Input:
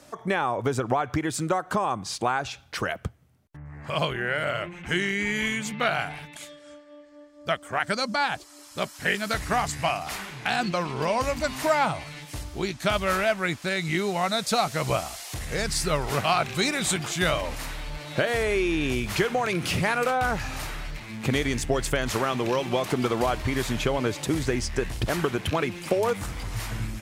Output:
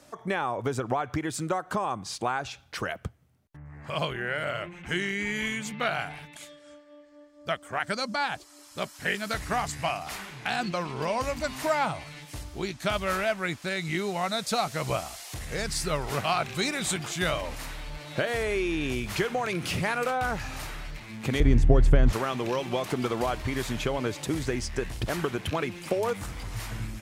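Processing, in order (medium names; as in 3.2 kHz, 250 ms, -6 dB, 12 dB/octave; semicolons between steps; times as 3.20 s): 21.40–22.13 s: tilt EQ -4 dB/octave; trim -3.5 dB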